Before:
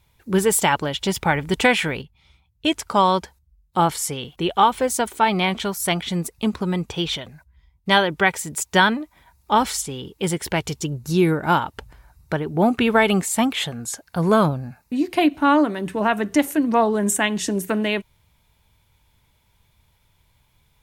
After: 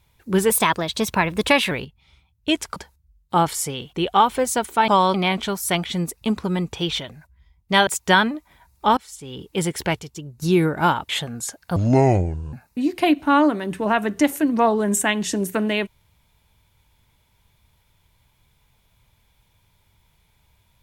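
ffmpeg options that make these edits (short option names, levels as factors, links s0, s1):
-filter_complex "[0:a]asplit=13[s0][s1][s2][s3][s4][s5][s6][s7][s8][s9][s10][s11][s12];[s0]atrim=end=0.504[s13];[s1]atrim=start=0.5:end=1.88,asetpts=PTS-STARTPTS,asetrate=50274,aresample=44100,atrim=end_sample=53384,asetpts=PTS-STARTPTS[s14];[s2]atrim=start=1.876:end=2.932[s15];[s3]atrim=start=3.188:end=5.312[s16];[s4]atrim=start=2.928:end=3.192[s17];[s5]atrim=start=5.308:end=8.042[s18];[s6]atrim=start=8.528:end=9.63,asetpts=PTS-STARTPTS,afade=t=out:st=1.098:d=0.004:c=hsin:silence=0.0794328[s19];[s7]atrim=start=9.63:end=10.652,asetpts=PTS-STARTPTS,afade=t=in:d=0.42:c=qua:silence=0.0794328[s20];[s8]atrim=start=10.648:end=11.082,asetpts=PTS-STARTPTS,volume=0.355[s21];[s9]atrim=start=11.078:end=11.752[s22];[s10]atrim=start=13.538:end=14.214[s23];[s11]atrim=start=14.21:end=14.68,asetpts=PTS-STARTPTS,asetrate=26901,aresample=44100[s24];[s12]atrim=start=14.676[s25];[s13][s14]acrossfade=d=0.004:c1=hsin:c2=hsin[s26];[s26][s15]acrossfade=d=0.004:c1=hsin:c2=hsin[s27];[s27][s16]acrossfade=d=0.004:c1=hsin:c2=hsin[s28];[s28][s17]acrossfade=d=0.004:c1=hsin:c2=hsin[s29];[s29][s18]acrossfade=d=0.004:c1=hsin:c2=hsin[s30];[s19][s20]concat=n=2:v=0:a=1[s31];[s30][s31]acrossfade=d=0.004:c1=hsin:c2=hsin[s32];[s32][s21]acrossfade=d=0.004:c1=hsin:c2=hsin[s33];[s33][s22]acrossfade=d=0.004:c1=hsin:c2=hsin[s34];[s34][s23]acrossfade=d=0.004:c1=hsin:c2=hsin[s35];[s35][s24]acrossfade=d=0.004:c1=hsin:c2=hsin[s36];[s36][s25]acrossfade=d=0.004:c1=hsin:c2=hsin"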